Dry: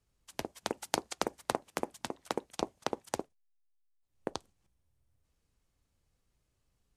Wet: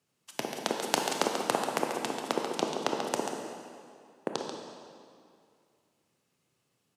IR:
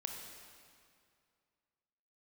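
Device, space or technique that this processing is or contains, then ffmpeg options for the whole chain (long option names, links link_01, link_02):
PA in a hall: -filter_complex "[0:a]highpass=frequency=140:width=0.5412,highpass=frequency=140:width=1.3066,equalizer=frequency=2800:width_type=o:width=0.22:gain=4,aecho=1:1:138:0.398[link_01];[1:a]atrim=start_sample=2205[link_02];[link_01][link_02]afir=irnorm=-1:irlink=0,volume=6.5dB"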